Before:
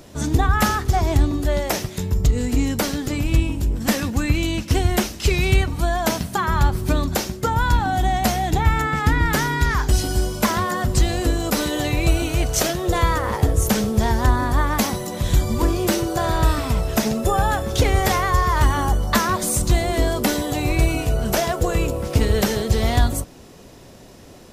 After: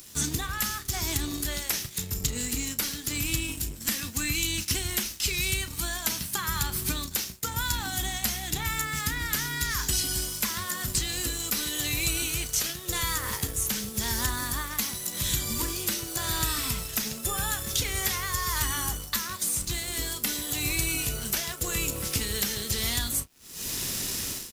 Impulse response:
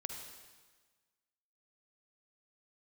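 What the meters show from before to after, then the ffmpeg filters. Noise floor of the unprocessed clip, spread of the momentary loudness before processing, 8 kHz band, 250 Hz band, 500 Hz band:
-43 dBFS, 4 LU, +1.5 dB, -14.0 dB, -17.5 dB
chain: -filter_complex "[0:a]equalizer=f=650:w=1.3:g=-11,crystalizer=i=8:c=0,dynaudnorm=f=130:g=5:m=3.76,asplit=2[s0][s1];[s1]acrusher=bits=3:mix=0:aa=0.5,volume=0.501[s2];[s0][s2]amix=inputs=2:normalize=0,acrossover=split=140|4200[s3][s4][s5];[s3]acompressor=threshold=0.0562:ratio=4[s6];[s4]acompressor=threshold=0.0794:ratio=4[s7];[s5]acompressor=threshold=0.0891:ratio=4[s8];[s6][s7][s8]amix=inputs=3:normalize=0,aeval=exprs='sgn(val(0))*max(abs(val(0))-0.00841,0)':c=same,asplit=2[s9][s10];[s10]adelay=34,volume=0.211[s11];[s9][s11]amix=inputs=2:normalize=0,volume=0.398"

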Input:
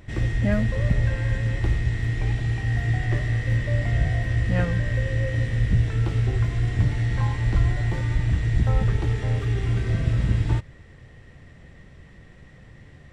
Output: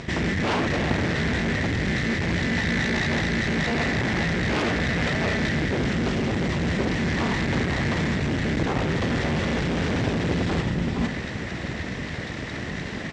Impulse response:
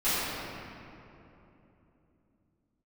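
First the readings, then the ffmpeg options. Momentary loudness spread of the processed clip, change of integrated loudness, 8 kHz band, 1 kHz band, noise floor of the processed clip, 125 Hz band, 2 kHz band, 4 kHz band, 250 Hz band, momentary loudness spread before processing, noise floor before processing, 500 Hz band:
7 LU, -1.0 dB, no reading, +9.0 dB, -33 dBFS, -5.5 dB, +7.5 dB, +11.0 dB, +7.5 dB, 3 LU, -48 dBFS, +6.5 dB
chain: -filter_complex "[0:a]aecho=1:1:106|156|467:0.266|0.133|0.251,asplit=2[s0][s1];[1:a]atrim=start_sample=2205[s2];[s1][s2]afir=irnorm=-1:irlink=0,volume=0.0158[s3];[s0][s3]amix=inputs=2:normalize=0,aeval=exprs='abs(val(0))':c=same,lowpass=f=6700:w=0.5412,lowpass=f=6700:w=1.3066,highshelf=f=4300:g=4.5,aeval=exprs='0.447*sin(PI/2*3.16*val(0)/0.447)':c=same,areverse,acompressor=threshold=0.0891:ratio=12,areverse,highpass=67,volume=2"

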